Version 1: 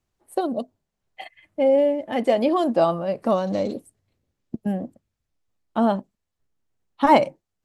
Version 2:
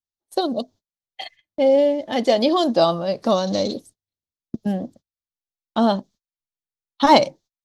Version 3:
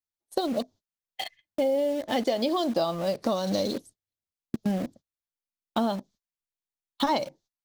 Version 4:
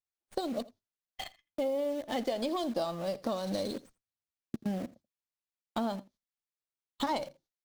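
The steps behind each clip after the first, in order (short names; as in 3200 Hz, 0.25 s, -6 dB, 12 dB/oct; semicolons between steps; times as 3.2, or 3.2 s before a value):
gate -48 dBFS, range -28 dB; band shelf 4700 Hz +13.5 dB 1.2 oct; gain +2 dB
in parallel at -6.5 dB: bit-crush 5-bit; on the sum: compressor 6:1, threshold -19 dBFS, peak gain reduction 13.5 dB; gain -4 dB
echo 83 ms -20.5 dB; running maximum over 3 samples; gain -6.5 dB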